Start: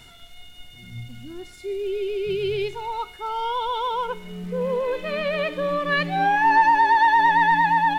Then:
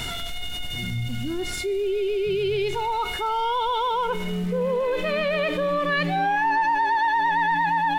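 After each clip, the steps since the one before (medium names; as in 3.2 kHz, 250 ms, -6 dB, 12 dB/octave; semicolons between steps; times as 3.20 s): level flattener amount 70%; trim -7 dB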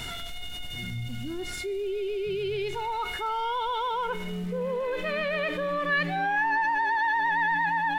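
dynamic bell 1.7 kHz, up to +6 dB, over -38 dBFS, Q 1.9; trim -6 dB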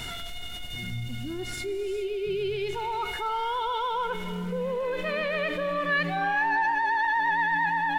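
gated-style reverb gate 450 ms rising, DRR 11.5 dB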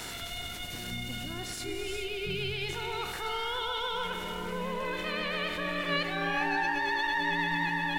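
spectral peaks clipped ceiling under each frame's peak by 18 dB; trim -4 dB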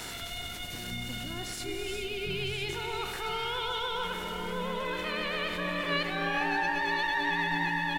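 delay 1007 ms -11 dB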